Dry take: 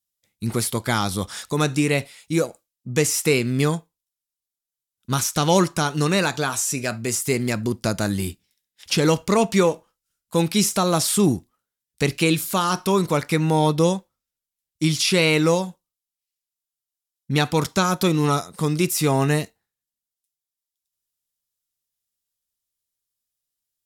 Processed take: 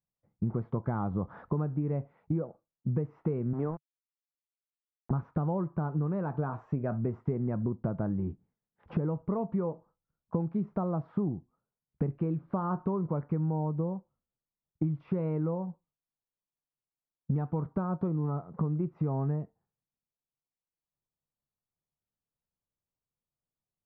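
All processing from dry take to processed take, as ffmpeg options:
ffmpeg -i in.wav -filter_complex "[0:a]asettb=1/sr,asplit=3[link_01][link_02][link_03];[link_01]atrim=end=3.534[link_04];[link_02]atrim=start=3.53:end=5.11,asetpts=PTS-STARTPTS,afade=type=in:duration=0.004:curve=qsin,afade=type=out:start_time=1.576:duration=0.004:curve=qsin,highpass=260,lowpass=6300,aeval=exprs='val(0)*gte(abs(val(0)),0.0376)':channel_layout=same[link_05];[link_03]atrim=start=5.106[link_06];[link_04][link_05]acrossfade=duration=0.004:curve1=hsin:curve2=qsin[link_07];[link_07][link_06]acrossfade=duration=0.004:curve1=qsin:curve2=hsin,lowpass=frequency=1100:width=0.5412,lowpass=frequency=1100:width=1.3066,equalizer=frequency=150:width=1.9:gain=7.5,acompressor=threshold=-28dB:ratio=16,volume=1dB" out.wav

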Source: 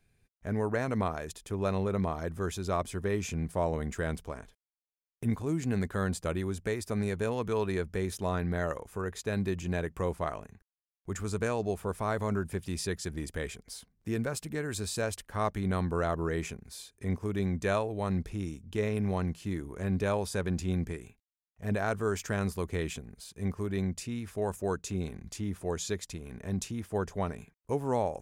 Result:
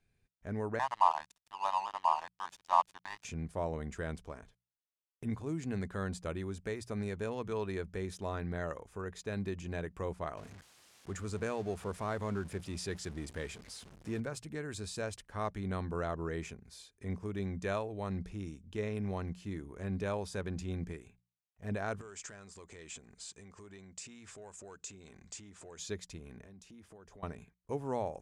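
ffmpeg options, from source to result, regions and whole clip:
ffmpeg -i in.wav -filter_complex "[0:a]asettb=1/sr,asplit=3[link_01][link_02][link_03];[link_01]atrim=end=0.794[link_04];[link_02]atrim=start=0.79:end=3.25,asetpts=PTS-STARTPTS,afade=type=in:duration=0.004:curve=qsin,afade=type=out:start_time=2.456:duration=0.004:curve=qsin,highpass=frequency=920:width_type=q:width=7.2,aecho=1:1:1.1:0.92,atrim=end_sample=108486,aeval=exprs='sgn(val(0))*max(abs(val(0))-0.0168,0)':channel_layout=same[link_05];[link_03]atrim=start=3.246[link_06];[link_04][link_05]acrossfade=duration=0.004:curve1=hsin:curve2=qsin[link_07];[link_07][link_06]acrossfade=duration=0.004:curve1=qsin:curve2=hsin,asettb=1/sr,asplit=3[link_08][link_09][link_10];[link_08]atrim=end=10.374[link_11];[link_09]atrim=start=10.37:end=14.2,asetpts=PTS-STARTPTS,afade=type=in:duration=0.004:curve=qsin,afade=type=out:start_time=3.826:duration=0.004:curve=qsin,aeval=exprs='val(0)+0.5*0.00891*sgn(val(0))':channel_layout=same,highpass=58[link_12];[link_10]atrim=start=14.196[link_13];[link_11][link_12]acrossfade=duration=0.004:curve1=hsin:curve2=qsin[link_14];[link_14][link_13]acrossfade=duration=0.004:curve1=qsin:curve2=hsin,asettb=1/sr,asplit=3[link_15][link_16][link_17];[link_15]atrim=end=22.014[link_18];[link_16]atrim=start=22.01:end=25.79,asetpts=PTS-STARTPTS,afade=type=in:duration=0.004:curve=qsin,afade=type=out:start_time=3.776:duration=0.004:curve=qsin,acompressor=threshold=-42dB:ratio=6:attack=3.2:release=140:knee=1:detection=peak,asplit=2[link_19][link_20];[link_20]highpass=frequency=720:poles=1,volume=11dB,asoftclip=type=tanh:threshold=-32.5dB[link_21];[link_19][link_21]amix=inputs=2:normalize=0,lowpass=frequency=5300:poles=1,volume=-6dB,lowpass=frequency=7700:width_type=q:width=4.7[link_22];[link_17]atrim=start=25.786[link_23];[link_18][link_22]acrossfade=duration=0.004:curve1=hsin:curve2=qsin[link_24];[link_24][link_23]acrossfade=duration=0.004:curve1=qsin:curve2=hsin,asettb=1/sr,asplit=3[link_25][link_26][link_27];[link_25]atrim=end=26.434[link_28];[link_26]atrim=start=26.43:end=27.23,asetpts=PTS-STARTPTS,afade=type=in:duration=0.004:curve=qsin,afade=type=out:start_time=0.796:duration=0.004:curve=qsin,equalizer=frequency=120:width=2.8:gain=-11,acompressor=threshold=-45dB:ratio=12:attack=3.2:release=140:knee=1:detection=peak[link_29];[link_27]atrim=start=27.226[link_30];[link_28][link_29]acrossfade=duration=0.004:curve1=hsin:curve2=qsin[link_31];[link_31][link_30]acrossfade=duration=0.004:curve1=qsin:curve2=hsin,lowpass=8500,bandreject=frequency=60:width_type=h:width=6,bandreject=frequency=120:width_type=h:width=6,bandreject=frequency=180:width_type=h:width=6,volume=-6dB" out.wav

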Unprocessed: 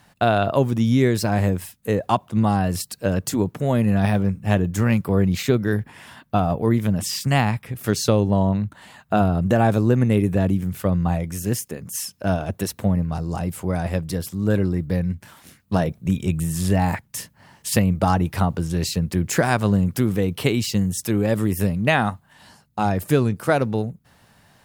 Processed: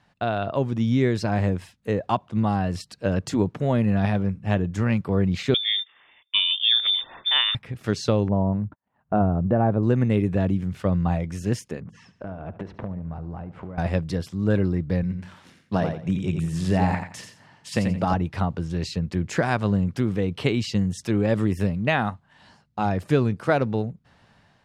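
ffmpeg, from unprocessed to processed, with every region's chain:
ffmpeg -i in.wav -filter_complex "[0:a]asettb=1/sr,asplit=3[link_01][link_02][link_03];[link_01]atrim=end=5.544[link_04];[link_02]atrim=start=5.54:end=7.55,asetpts=PTS-STARTPTS,afade=type=in:duration=0.004:curve=qsin,afade=type=out:start_time=2.006:duration=0.004:curve=qsin,agate=range=-10dB:threshold=-39dB:ratio=16:release=100:detection=peak,lowpass=frequency=3100:width_type=q:width=0.5098,lowpass=frequency=3100:width_type=q:width=0.6013,lowpass=frequency=3100:width_type=q:width=0.9,lowpass=frequency=3100:width_type=q:width=2.563,afreqshift=-3700[link_05];[link_03]atrim=start=7.546[link_06];[link_04][link_05]acrossfade=duration=0.004:curve1=hsin:curve2=qsin[link_07];[link_07][link_06]acrossfade=duration=0.004:curve1=qsin:curve2=hsin,asettb=1/sr,asplit=3[link_08][link_09][link_10];[link_08]atrim=end=8.284[link_11];[link_09]atrim=start=8.28:end=9.83,asetpts=PTS-STARTPTS,afade=type=in:duration=0.004:curve=qsin,afade=type=out:start_time=1.546:duration=0.004:curve=qsin,lowpass=1100,agate=range=-56dB:threshold=-44dB:ratio=16:release=100:detection=peak,acompressor=mode=upward:threshold=-26dB:ratio=2.5:attack=3.2:release=140:knee=2.83:detection=peak[link_12];[link_10]atrim=start=9.826[link_13];[link_11][link_12]acrossfade=duration=0.004:curve1=hsin:curve2=qsin[link_14];[link_14][link_13]acrossfade=duration=0.004:curve1=qsin:curve2=hsin,asettb=1/sr,asplit=3[link_15][link_16][link_17];[link_15]atrim=end=11.804[link_18];[link_16]atrim=start=11.8:end=13.78,asetpts=PTS-STARTPTS,afade=type=in:duration=0.004:curve=qsin,afade=type=out:start_time=1.976:duration=0.004:curve=qsin,lowpass=1600,acompressor=threshold=-32dB:ratio=12:attack=3.2:release=140:knee=1:detection=peak,aecho=1:1:72|144|216|288:0.178|0.0854|0.041|0.0197,atrim=end_sample=87318[link_19];[link_17]atrim=start=13.776[link_20];[link_18][link_19]acrossfade=duration=0.004:curve1=hsin:curve2=qsin[link_21];[link_21][link_20]acrossfade=duration=0.004:curve1=qsin:curve2=hsin,asettb=1/sr,asplit=3[link_22][link_23][link_24];[link_22]atrim=end=15.034[link_25];[link_23]atrim=start=15.03:end=18.14,asetpts=PTS-STARTPTS,afade=type=in:duration=0.004:curve=qsin,afade=type=out:start_time=3.106:duration=0.004:curve=qsin,highpass=100,aecho=1:1:87|174|261:0.473|0.118|0.0296,atrim=end_sample=137151[link_26];[link_24]atrim=start=18.136[link_27];[link_25][link_26]acrossfade=duration=0.004:curve1=hsin:curve2=qsin[link_28];[link_28][link_27]acrossfade=duration=0.004:curve1=qsin:curve2=hsin,lowpass=4800,dynaudnorm=framelen=420:gausssize=3:maxgain=11.5dB,volume=-7.5dB" out.wav

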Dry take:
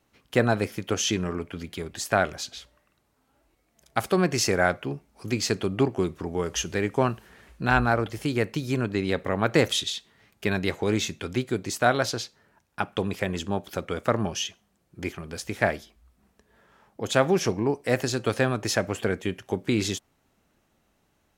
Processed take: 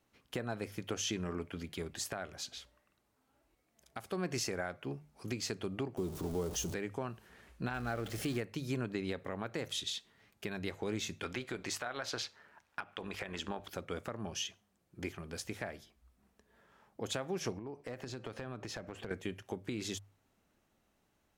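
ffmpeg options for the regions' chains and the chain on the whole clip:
ffmpeg -i in.wav -filter_complex "[0:a]asettb=1/sr,asplit=3[link_01][link_02][link_03];[link_01]atrim=end=5.974[link_04];[link_02]atrim=start=5.97:end=6.74,asetpts=PTS-STARTPTS,afade=type=in:duration=0.004:curve=qsin,afade=type=out:start_time=0.766:duration=0.004:curve=qsin,aeval=exprs='val(0)+0.5*0.0316*sgn(val(0))':channel_layout=same,equalizer=frequency=1900:width_type=o:width=1.7:gain=-13[link_05];[link_03]atrim=start=6.736[link_06];[link_04][link_05]acrossfade=duration=0.004:curve1=hsin:curve2=qsin[link_07];[link_07][link_06]acrossfade=duration=0.004:curve1=qsin:curve2=hsin,asettb=1/sr,asplit=3[link_08][link_09][link_10];[link_08]atrim=end=7.744[link_11];[link_09]atrim=start=7.74:end=8.41,asetpts=PTS-STARTPTS,afade=type=in:duration=0.004:curve=qsin,afade=type=out:start_time=0.666:duration=0.004:curve=qsin,aeval=exprs='val(0)+0.5*0.0266*sgn(val(0))':channel_layout=same,equalizer=frequency=960:width=7.8:gain=-13.5[link_12];[link_10]atrim=start=8.406[link_13];[link_11][link_12]acrossfade=duration=0.004:curve1=hsin:curve2=qsin[link_14];[link_14][link_13]acrossfade=duration=0.004:curve1=qsin:curve2=hsin,asettb=1/sr,asplit=3[link_15][link_16][link_17];[link_15]atrim=end=11.234[link_18];[link_16]atrim=start=11.23:end=13.68,asetpts=PTS-STARTPTS,afade=type=in:duration=0.004:curve=qsin,afade=type=out:start_time=2.446:duration=0.004:curve=qsin,equalizer=frequency=1700:width=0.32:gain=12,acompressor=threshold=-23dB:ratio=2:attack=3.2:release=140:knee=1:detection=peak,tremolo=f=150:d=0.4[link_19];[link_17]atrim=start=13.676[link_20];[link_18][link_19]acrossfade=duration=0.004:curve1=hsin:curve2=qsin[link_21];[link_21][link_20]acrossfade=duration=0.004:curve1=qsin:curve2=hsin,asettb=1/sr,asplit=3[link_22][link_23][link_24];[link_22]atrim=end=17.584[link_25];[link_23]atrim=start=17.58:end=19.11,asetpts=PTS-STARTPTS,afade=type=in:duration=0.004:curve=qsin,afade=type=out:start_time=1.526:duration=0.004:curve=qsin,equalizer=frequency=12000:width=0.42:gain=-12,acompressor=threshold=-32dB:ratio=8:attack=3.2:release=140:knee=1:detection=peak,aeval=exprs='clip(val(0),-1,0.0398)':channel_layout=same[link_26];[link_24]atrim=start=19.106[link_27];[link_25][link_26]acrossfade=duration=0.004:curve1=hsin:curve2=qsin[link_28];[link_28][link_27]acrossfade=duration=0.004:curve1=qsin:curve2=hsin,bandreject=frequency=50:width_type=h:width=6,bandreject=frequency=100:width_type=h:width=6,bandreject=frequency=150:width_type=h:width=6,acompressor=threshold=-25dB:ratio=2.5,alimiter=limit=-18.5dB:level=0:latency=1:release=386,volume=-6.5dB" out.wav

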